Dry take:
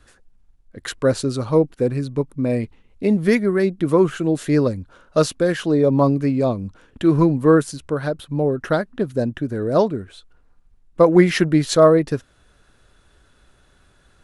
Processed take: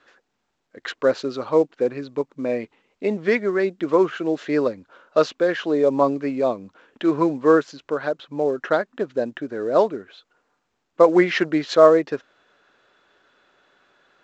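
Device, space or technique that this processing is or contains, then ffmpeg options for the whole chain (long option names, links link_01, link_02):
telephone: -af "highpass=380,lowpass=3500,volume=1dB" -ar 16000 -c:a pcm_mulaw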